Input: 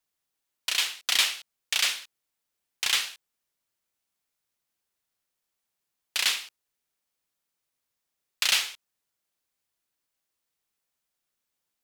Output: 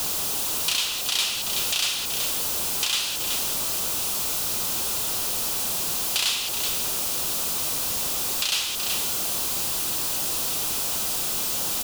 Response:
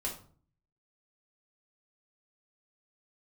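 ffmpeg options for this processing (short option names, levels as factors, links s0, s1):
-af "aeval=exprs='val(0)+0.5*0.0562*sgn(val(0))':c=same,equalizer=f=1800:t=o:w=0.59:g=-10,bandreject=f=2200:w=13,aecho=1:1:377:0.224,alimiter=limit=0.133:level=0:latency=1:release=412,volume=1.88"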